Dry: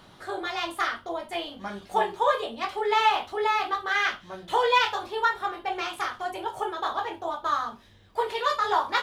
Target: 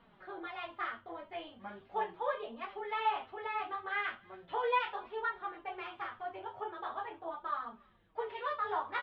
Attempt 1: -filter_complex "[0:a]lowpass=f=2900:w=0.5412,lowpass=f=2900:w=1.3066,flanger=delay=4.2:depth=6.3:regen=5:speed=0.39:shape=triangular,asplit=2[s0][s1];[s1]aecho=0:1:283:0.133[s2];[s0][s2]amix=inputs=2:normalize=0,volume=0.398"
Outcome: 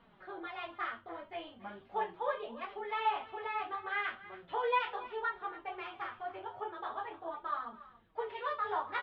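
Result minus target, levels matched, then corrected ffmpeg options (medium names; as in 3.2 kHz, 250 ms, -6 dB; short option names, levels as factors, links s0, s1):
echo-to-direct +12 dB
-filter_complex "[0:a]lowpass=f=2900:w=0.5412,lowpass=f=2900:w=1.3066,flanger=delay=4.2:depth=6.3:regen=5:speed=0.39:shape=triangular,asplit=2[s0][s1];[s1]aecho=0:1:283:0.0335[s2];[s0][s2]amix=inputs=2:normalize=0,volume=0.398"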